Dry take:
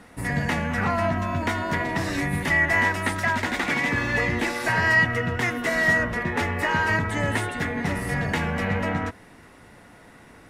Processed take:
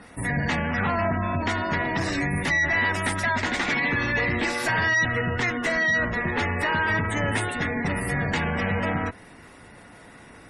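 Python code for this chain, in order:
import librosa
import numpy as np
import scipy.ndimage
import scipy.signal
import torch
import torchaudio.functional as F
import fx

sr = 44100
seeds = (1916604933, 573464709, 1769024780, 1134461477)

y = fx.high_shelf(x, sr, hz=3600.0, db=5.5)
y = fx.tube_stage(y, sr, drive_db=21.0, bias=0.35)
y = fx.spec_gate(y, sr, threshold_db=-25, keep='strong')
y = y * 10.0 ** (2.5 / 20.0)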